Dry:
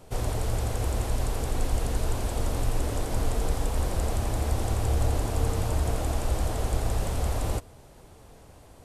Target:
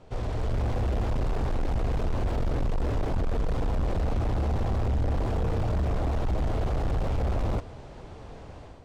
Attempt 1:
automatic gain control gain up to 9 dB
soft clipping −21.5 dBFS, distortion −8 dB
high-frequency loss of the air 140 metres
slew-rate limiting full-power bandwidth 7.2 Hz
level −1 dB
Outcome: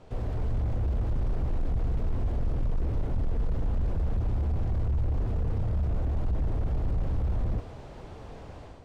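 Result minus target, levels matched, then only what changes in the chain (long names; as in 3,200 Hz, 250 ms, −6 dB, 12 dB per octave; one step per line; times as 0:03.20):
slew-rate limiting: distortion +11 dB
change: slew-rate limiting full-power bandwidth 25.5 Hz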